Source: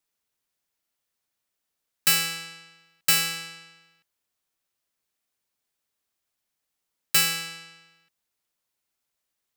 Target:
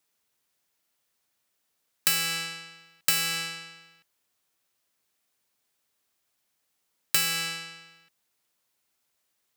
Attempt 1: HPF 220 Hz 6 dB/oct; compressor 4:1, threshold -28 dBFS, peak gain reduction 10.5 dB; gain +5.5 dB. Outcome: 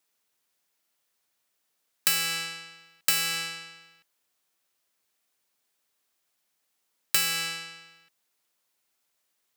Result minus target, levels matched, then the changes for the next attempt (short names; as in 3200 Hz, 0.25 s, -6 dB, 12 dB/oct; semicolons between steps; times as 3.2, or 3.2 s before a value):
125 Hz band -3.5 dB
change: HPF 78 Hz 6 dB/oct